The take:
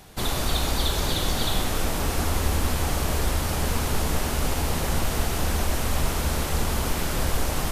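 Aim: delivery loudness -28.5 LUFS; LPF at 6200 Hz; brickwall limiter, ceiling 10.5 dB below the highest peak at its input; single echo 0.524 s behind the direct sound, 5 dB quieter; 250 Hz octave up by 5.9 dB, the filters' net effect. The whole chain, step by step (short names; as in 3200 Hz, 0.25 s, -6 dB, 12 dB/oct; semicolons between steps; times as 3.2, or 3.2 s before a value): LPF 6200 Hz; bell 250 Hz +7.5 dB; limiter -20 dBFS; echo 0.524 s -5 dB; gain +0.5 dB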